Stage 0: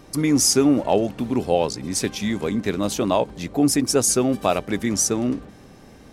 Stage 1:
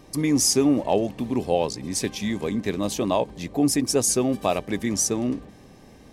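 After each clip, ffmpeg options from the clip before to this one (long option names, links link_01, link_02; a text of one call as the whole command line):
ffmpeg -i in.wav -af "bandreject=frequency=1400:width=5.2,volume=-2.5dB" out.wav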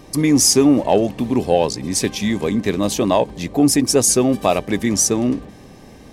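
ffmpeg -i in.wav -af "acontrast=36,volume=1.5dB" out.wav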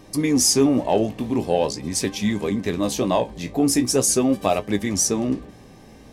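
ffmpeg -i in.wav -af "flanger=delay=9.6:depth=9:regen=48:speed=0.43:shape=sinusoidal" out.wav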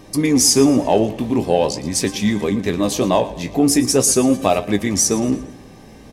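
ffmpeg -i in.wav -af "aecho=1:1:115|230|345|460:0.15|0.0613|0.0252|0.0103,volume=4dB" out.wav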